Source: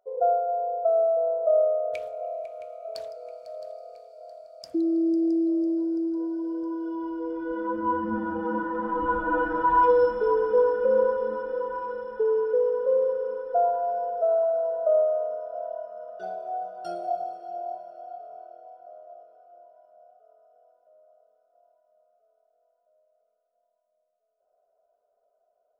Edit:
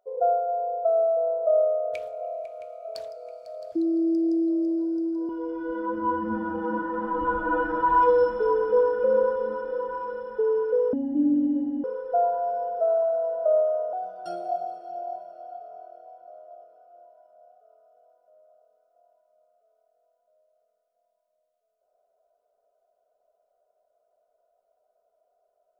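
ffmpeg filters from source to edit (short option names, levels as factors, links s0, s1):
-filter_complex "[0:a]asplit=6[s0][s1][s2][s3][s4][s5];[s0]atrim=end=3.722[s6];[s1]atrim=start=4.708:end=6.282[s7];[s2]atrim=start=7.098:end=12.744[s8];[s3]atrim=start=12.74:end=13.25,asetpts=PTS-STARTPTS,asetrate=24696,aresample=44100,atrim=end_sample=40162,asetpts=PTS-STARTPTS[s9];[s4]atrim=start=13.246:end=15.342[s10];[s5]atrim=start=16.518[s11];[s6][s7]acrossfade=d=0.004:c1=hsin:c2=hsin[s12];[s12][s8]acrossfade=d=0.004:c1=hsin:c2=hsin[s13];[s13][s9]acrossfade=d=0.004:c1=hsin:c2=hsin[s14];[s14][s10]acrossfade=d=0.004:c1=hsin:c2=hsin[s15];[s15][s11]acrossfade=d=0.004:c1=hsin:c2=hsin"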